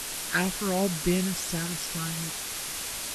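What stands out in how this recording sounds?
phaser sweep stages 12, 2.8 Hz, lowest notch 610–1,400 Hz
a quantiser's noise floor 6 bits, dither triangular
Ogg Vorbis

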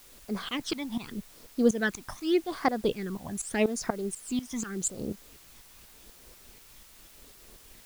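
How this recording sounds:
tremolo saw up 4.1 Hz, depth 90%
phaser sweep stages 12, 0.84 Hz, lowest notch 440–3,100 Hz
a quantiser's noise floor 10 bits, dither triangular

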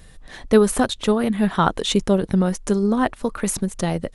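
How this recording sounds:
background noise floor −46 dBFS
spectral slope −5.0 dB per octave

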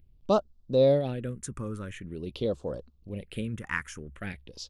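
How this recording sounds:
phaser sweep stages 4, 0.46 Hz, lowest notch 640–2,000 Hz

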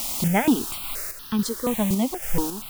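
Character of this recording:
a quantiser's noise floor 6 bits, dither triangular
sample-and-hold tremolo 3.6 Hz, depth 70%
notches that jump at a steady rate 4.2 Hz 440–2,200 Hz

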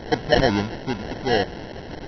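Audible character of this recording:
a quantiser's noise floor 6 bits, dither triangular
phaser sweep stages 6, 2.4 Hz, lowest notch 220–4,700 Hz
aliases and images of a low sample rate 1,200 Hz, jitter 0%
MP2

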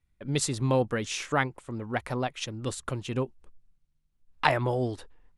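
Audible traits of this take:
background noise floor −72 dBFS
spectral slope −4.5 dB per octave

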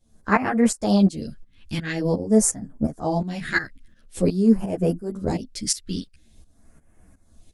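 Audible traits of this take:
phaser sweep stages 2, 0.47 Hz, lowest notch 680–3,700 Hz
tremolo saw up 2.8 Hz, depth 85%
a shimmering, thickened sound

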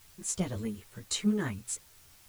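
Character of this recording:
tremolo saw down 3.6 Hz, depth 40%
a quantiser's noise floor 10 bits, dither triangular
a shimmering, thickened sound

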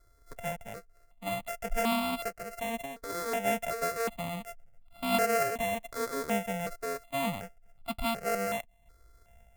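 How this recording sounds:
a buzz of ramps at a fixed pitch in blocks of 64 samples
sample-and-hold tremolo
notches that jump at a steady rate 2.7 Hz 770–1,700 Hz

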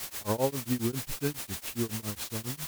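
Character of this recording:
a quantiser's noise floor 6 bits, dither triangular
tremolo triangle 7.3 Hz, depth 100%
Ogg Vorbis

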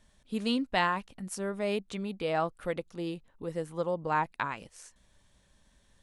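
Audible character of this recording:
background noise floor −67 dBFS
spectral slope −3.5 dB per octave

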